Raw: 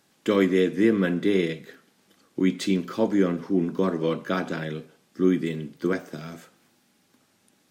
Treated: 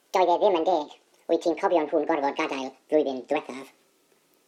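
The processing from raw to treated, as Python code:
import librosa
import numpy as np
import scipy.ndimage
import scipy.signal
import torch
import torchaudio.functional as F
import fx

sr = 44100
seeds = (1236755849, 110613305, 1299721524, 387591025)

y = fx.speed_glide(x, sr, from_pct=189, to_pct=155)
y = fx.env_lowpass_down(y, sr, base_hz=2500.0, full_db=-18.5)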